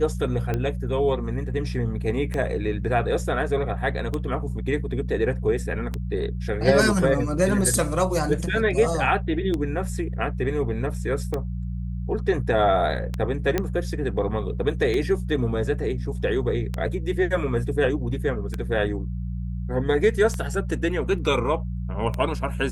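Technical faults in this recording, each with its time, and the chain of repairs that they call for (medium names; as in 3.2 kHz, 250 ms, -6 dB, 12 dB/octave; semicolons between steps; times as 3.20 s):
hum 60 Hz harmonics 3 -29 dBFS
tick 33 1/3 rpm -14 dBFS
13.58 s: pop -9 dBFS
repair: de-click; de-hum 60 Hz, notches 3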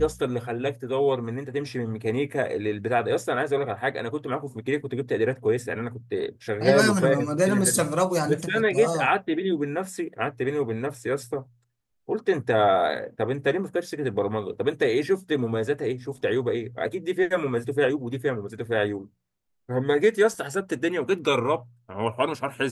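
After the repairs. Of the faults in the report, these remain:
nothing left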